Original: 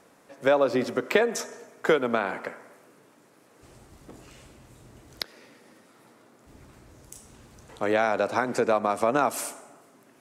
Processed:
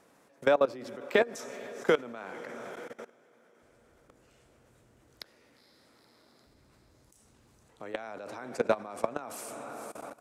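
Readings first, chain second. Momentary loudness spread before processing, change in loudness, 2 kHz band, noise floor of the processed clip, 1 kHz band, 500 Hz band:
14 LU, −6.5 dB, −6.0 dB, −64 dBFS, −9.0 dB, −5.0 dB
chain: feedback delay with all-pass diffusion 475 ms, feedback 63%, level −15.5 dB
output level in coarse steps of 21 dB

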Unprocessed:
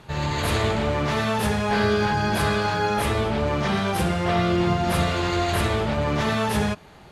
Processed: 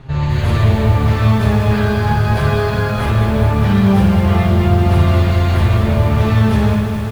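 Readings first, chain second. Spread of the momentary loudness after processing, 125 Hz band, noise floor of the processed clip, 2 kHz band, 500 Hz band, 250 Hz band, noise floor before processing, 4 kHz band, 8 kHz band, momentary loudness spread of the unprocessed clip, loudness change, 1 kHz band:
4 LU, +14.0 dB, −18 dBFS, +2.5 dB, +4.0 dB, +9.0 dB, −47 dBFS, +0.5 dB, can't be measured, 3 LU, +8.5 dB, +2.5 dB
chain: RIAA equalisation playback
in parallel at +2.5 dB: brickwall limiter −11.5 dBFS, peak gain reduction 10.5 dB
on the sum: tilt shelving filter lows −3 dB, about 1,300 Hz
on a send: multi-tap delay 56/133/195/362 ms −5.5/−11.5/−14.5/−18 dB
on the sum: flanger 0.38 Hz, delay 7.3 ms, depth 2.7 ms, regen +25%
feedback echo at a low word length 204 ms, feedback 80%, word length 6 bits, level −8 dB
level −1 dB

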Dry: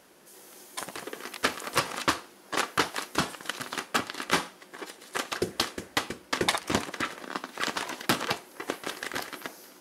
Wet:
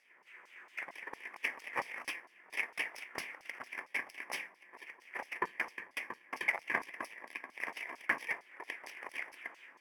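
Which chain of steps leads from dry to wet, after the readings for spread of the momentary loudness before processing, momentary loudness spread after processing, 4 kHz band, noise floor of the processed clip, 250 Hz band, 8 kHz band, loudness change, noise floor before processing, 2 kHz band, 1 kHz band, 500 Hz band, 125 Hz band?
13 LU, 12 LU, −18.5 dB, −65 dBFS, −19.5 dB, −19.5 dB, −9.0 dB, −54 dBFS, −4.5 dB, −12.0 dB, −15.0 dB, below −20 dB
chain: samples in bit-reversed order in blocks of 32 samples
auto-filter band-pass saw down 4.4 Hz 940–5,000 Hz
high shelf with overshoot 2,900 Hz −10.5 dB, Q 3
level +4.5 dB

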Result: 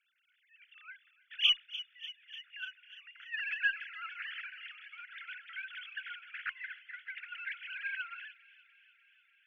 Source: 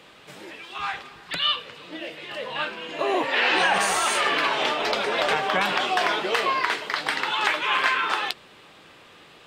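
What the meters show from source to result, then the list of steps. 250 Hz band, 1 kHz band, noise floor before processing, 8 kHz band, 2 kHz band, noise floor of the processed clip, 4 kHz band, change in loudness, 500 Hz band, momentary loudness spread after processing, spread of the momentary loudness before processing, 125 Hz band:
below −40 dB, −28.5 dB, −50 dBFS, below −30 dB, −13.0 dB, −74 dBFS, −9.5 dB, −14.0 dB, below −40 dB, 19 LU, 15 LU, below −35 dB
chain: three sine waves on the formant tracks
Butterworth high-pass 1,400 Hz 96 dB per octave
harmonic generator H 4 −37 dB, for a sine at −7.5 dBFS
delay with a high-pass on its return 296 ms, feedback 74%, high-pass 3,000 Hz, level −7 dB
expander for the loud parts 1.5 to 1, over −42 dBFS
level −8 dB

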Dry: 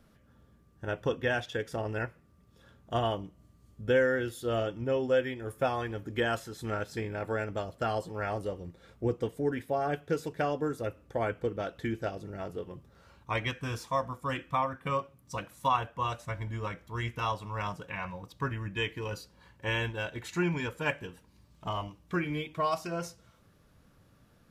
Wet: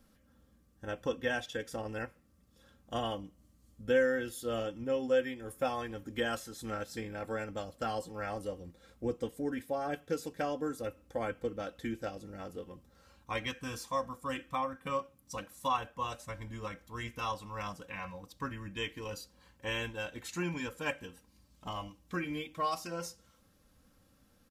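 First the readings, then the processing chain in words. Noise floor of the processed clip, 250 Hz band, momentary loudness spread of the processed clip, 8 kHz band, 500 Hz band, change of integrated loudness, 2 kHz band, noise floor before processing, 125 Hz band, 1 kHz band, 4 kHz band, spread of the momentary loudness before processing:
−67 dBFS, −3.0 dB, 11 LU, +2.0 dB, −3.5 dB, −4.0 dB, −4.0 dB, −63 dBFS, −9.0 dB, −4.5 dB, −2.0 dB, 10 LU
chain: bass and treble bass +1 dB, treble +7 dB
comb filter 3.8 ms, depth 54%
level −5.5 dB

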